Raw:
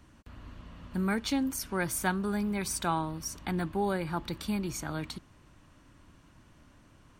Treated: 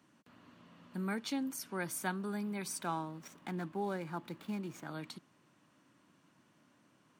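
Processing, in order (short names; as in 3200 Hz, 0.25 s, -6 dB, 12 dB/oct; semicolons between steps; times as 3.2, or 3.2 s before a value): 2.82–4.87 median filter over 9 samples; HPF 150 Hz 24 dB/oct; gain -7 dB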